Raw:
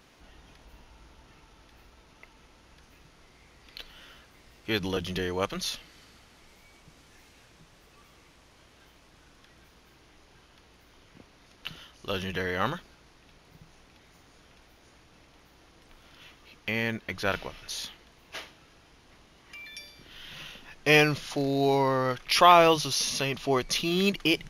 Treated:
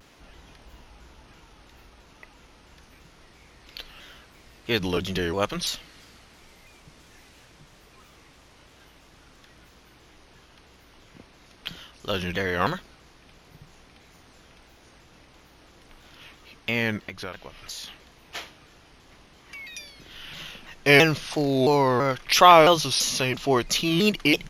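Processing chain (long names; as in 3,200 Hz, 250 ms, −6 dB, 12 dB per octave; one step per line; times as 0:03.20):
0:17.06–0:17.88: downward compressor 4 to 1, threshold −39 dBFS, peak gain reduction 14.5 dB
pitch modulation by a square or saw wave saw down 3 Hz, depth 160 cents
level +4 dB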